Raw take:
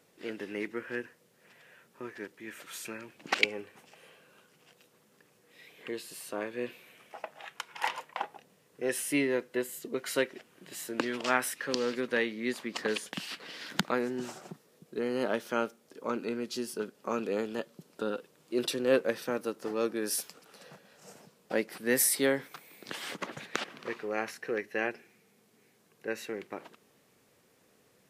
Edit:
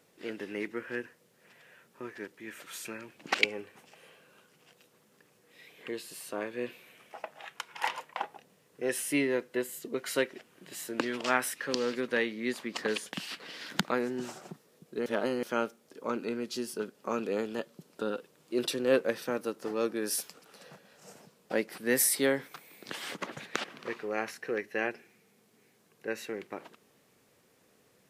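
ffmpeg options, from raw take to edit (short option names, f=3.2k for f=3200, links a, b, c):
-filter_complex "[0:a]asplit=3[a][b][c];[a]atrim=end=15.062[d];[b]atrim=start=15.058:end=15.432,asetpts=PTS-STARTPTS,areverse[e];[c]atrim=start=15.428[f];[d][e]acrossfade=d=0.004:c1=hsin:c2=hsin[g];[g][f]acrossfade=d=0.004:c1=hsin:c2=hsin"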